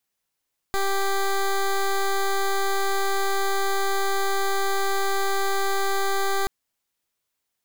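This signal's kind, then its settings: pulse 392 Hz, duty 14% -22.5 dBFS 5.73 s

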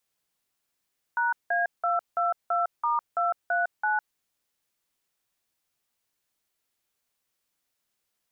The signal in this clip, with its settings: DTMF "#A222*239", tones 0.156 s, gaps 0.177 s, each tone -25 dBFS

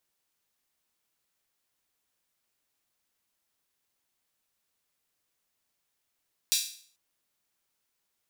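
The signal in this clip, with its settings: open hi-hat length 0.44 s, high-pass 3900 Hz, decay 0.50 s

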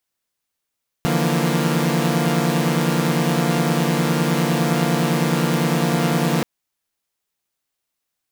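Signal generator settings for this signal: chord D3/E3/F3/A#3 saw, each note -20 dBFS 5.38 s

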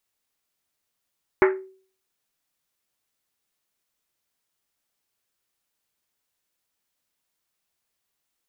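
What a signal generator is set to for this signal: Risset drum, pitch 380 Hz, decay 0.47 s, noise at 1600 Hz, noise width 1100 Hz, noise 25%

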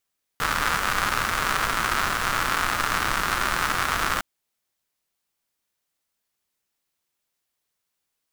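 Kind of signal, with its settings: rain from filtered ticks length 3.81 s, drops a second 200, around 1300 Hz, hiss -6.5 dB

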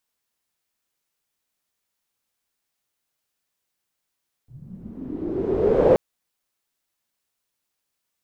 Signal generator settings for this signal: swept filtered noise white, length 1.48 s lowpass, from 110 Hz, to 520 Hz, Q 6.6, linear, gain ramp +27 dB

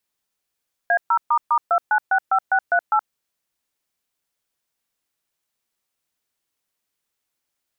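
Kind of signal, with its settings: DTMF "A0**2965638", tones 73 ms, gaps 0.129 s, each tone -17 dBFS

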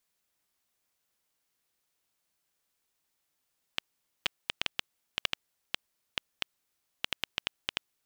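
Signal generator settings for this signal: random clicks 4.3/s -10 dBFS 4.81 s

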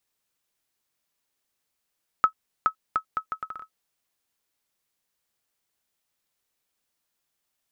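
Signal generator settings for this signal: bouncing ball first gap 0.42 s, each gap 0.71, 1290 Hz, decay 90 ms -8 dBFS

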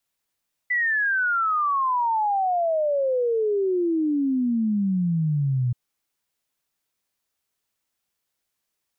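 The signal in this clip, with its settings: log sweep 2000 Hz -> 120 Hz 5.03 s -19.5 dBFS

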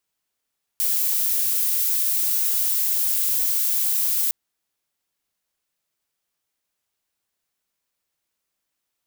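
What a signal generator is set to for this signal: noise violet, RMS -21.5 dBFS 3.51 s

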